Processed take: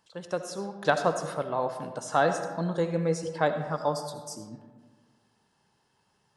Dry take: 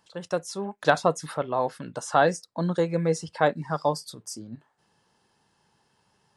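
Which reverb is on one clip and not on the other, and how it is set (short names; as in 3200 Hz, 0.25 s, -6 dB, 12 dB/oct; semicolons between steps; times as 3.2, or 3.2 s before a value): digital reverb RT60 1.5 s, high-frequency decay 0.45×, pre-delay 35 ms, DRR 7.5 dB; gain -3.5 dB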